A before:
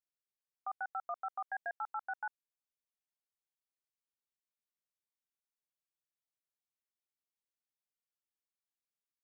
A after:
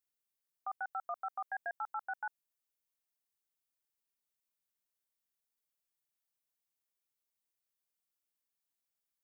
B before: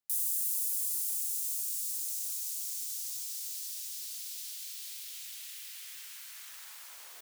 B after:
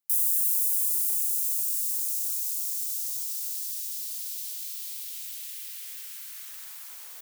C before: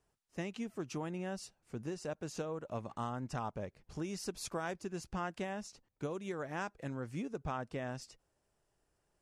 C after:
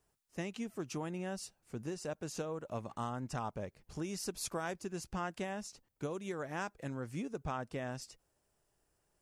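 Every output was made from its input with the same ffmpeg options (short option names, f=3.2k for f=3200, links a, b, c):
-af "highshelf=f=8.8k:g=9"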